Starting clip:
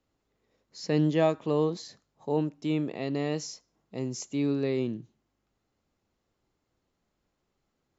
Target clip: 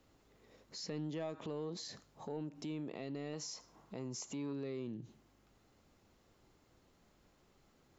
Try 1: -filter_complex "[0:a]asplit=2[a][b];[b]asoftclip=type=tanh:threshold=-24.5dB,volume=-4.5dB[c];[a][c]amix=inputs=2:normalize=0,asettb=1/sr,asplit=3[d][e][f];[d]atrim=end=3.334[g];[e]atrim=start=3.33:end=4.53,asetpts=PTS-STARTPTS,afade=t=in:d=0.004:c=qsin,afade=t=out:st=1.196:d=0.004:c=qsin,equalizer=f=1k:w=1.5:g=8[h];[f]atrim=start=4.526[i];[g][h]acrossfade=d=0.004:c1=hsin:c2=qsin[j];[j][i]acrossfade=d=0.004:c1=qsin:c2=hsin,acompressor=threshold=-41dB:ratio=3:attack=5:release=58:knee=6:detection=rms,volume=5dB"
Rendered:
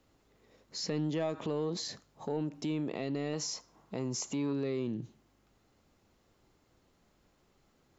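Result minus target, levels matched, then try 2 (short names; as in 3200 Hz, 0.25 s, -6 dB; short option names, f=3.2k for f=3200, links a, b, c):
compressor: peak gain reduction -8 dB
-filter_complex "[0:a]asplit=2[a][b];[b]asoftclip=type=tanh:threshold=-24.5dB,volume=-4.5dB[c];[a][c]amix=inputs=2:normalize=0,asettb=1/sr,asplit=3[d][e][f];[d]atrim=end=3.334[g];[e]atrim=start=3.33:end=4.53,asetpts=PTS-STARTPTS,afade=t=in:d=0.004:c=qsin,afade=t=out:st=1.196:d=0.004:c=qsin,equalizer=f=1k:w=1.5:g=8[h];[f]atrim=start=4.526[i];[g][h]acrossfade=d=0.004:c1=hsin:c2=qsin[j];[j][i]acrossfade=d=0.004:c1=qsin:c2=hsin,acompressor=threshold=-53dB:ratio=3:attack=5:release=58:knee=6:detection=rms,volume=5dB"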